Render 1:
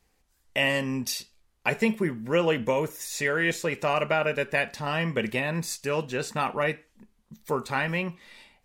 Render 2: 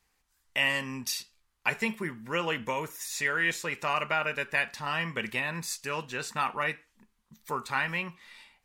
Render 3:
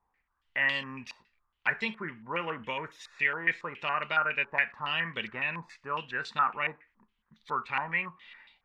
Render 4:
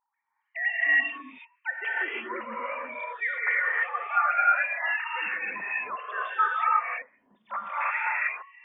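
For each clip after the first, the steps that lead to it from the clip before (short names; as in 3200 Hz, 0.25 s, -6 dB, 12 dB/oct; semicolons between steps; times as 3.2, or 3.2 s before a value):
resonant low shelf 790 Hz -6.5 dB, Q 1.5; gain -1.5 dB
stepped low-pass 7.2 Hz 950–3700 Hz; gain -5.5 dB
sine-wave speech; non-linear reverb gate 0.36 s rising, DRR -6 dB; painted sound noise, 7.8–8.28, 1200–2700 Hz -30 dBFS; gain -2.5 dB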